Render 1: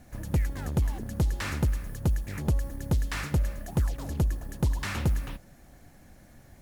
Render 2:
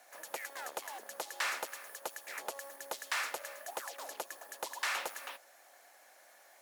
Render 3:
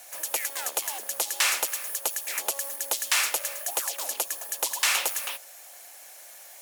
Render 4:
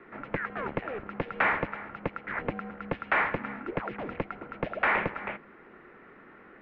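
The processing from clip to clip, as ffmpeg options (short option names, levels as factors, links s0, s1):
-af "highpass=f=590:w=0.5412,highpass=f=590:w=1.3066,volume=1.12"
-af "aexciter=amount=2.6:drive=5:freq=2400,volume=2"
-af "highpass=f=230:t=q:w=0.5412,highpass=f=230:t=q:w=1.307,lowpass=f=2400:t=q:w=0.5176,lowpass=f=2400:t=q:w=0.7071,lowpass=f=2400:t=q:w=1.932,afreqshift=-350,volume=1.58"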